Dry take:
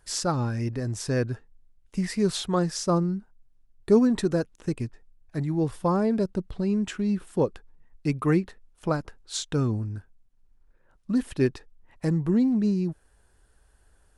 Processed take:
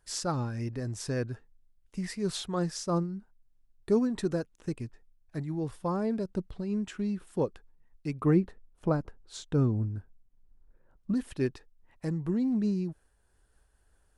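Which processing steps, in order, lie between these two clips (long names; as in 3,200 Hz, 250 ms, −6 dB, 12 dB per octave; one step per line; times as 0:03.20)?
0:08.21–0:11.14: tilt shelving filter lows +6 dB, about 1,300 Hz
amplitude modulation by smooth noise, depth 55%
level −3.5 dB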